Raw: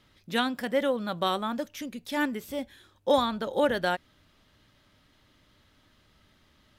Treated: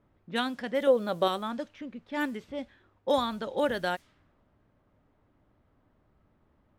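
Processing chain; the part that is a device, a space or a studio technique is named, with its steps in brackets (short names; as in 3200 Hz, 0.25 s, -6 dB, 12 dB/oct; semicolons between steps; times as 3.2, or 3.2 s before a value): 0.87–1.28 bell 480 Hz +10 dB 1.1 oct; cassette deck with a dynamic noise filter (white noise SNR 30 dB; low-pass opened by the level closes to 820 Hz, open at -23.5 dBFS); gain -3 dB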